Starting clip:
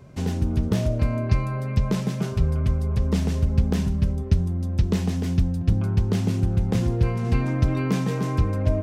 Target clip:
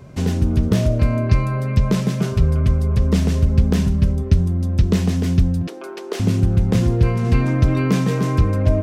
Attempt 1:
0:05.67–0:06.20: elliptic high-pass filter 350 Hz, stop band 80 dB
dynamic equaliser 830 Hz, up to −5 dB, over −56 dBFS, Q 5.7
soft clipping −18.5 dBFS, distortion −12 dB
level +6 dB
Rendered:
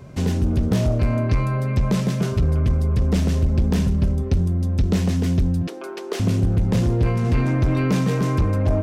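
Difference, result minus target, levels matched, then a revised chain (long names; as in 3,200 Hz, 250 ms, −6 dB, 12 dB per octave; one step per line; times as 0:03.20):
soft clipping: distortion +15 dB
0:05.67–0:06.20: elliptic high-pass filter 350 Hz, stop band 80 dB
dynamic equaliser 830 Hz, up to −5 dB, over −56 dBFS, Q 5.7
soft clipping −7 dBFS, distortion −26 dB
level +6 dB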